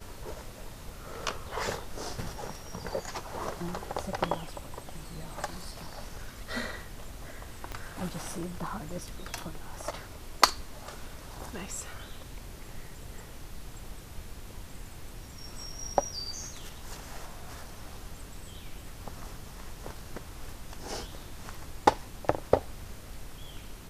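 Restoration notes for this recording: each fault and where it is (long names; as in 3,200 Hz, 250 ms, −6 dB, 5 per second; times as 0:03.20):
0:07.72: click −22 dBFS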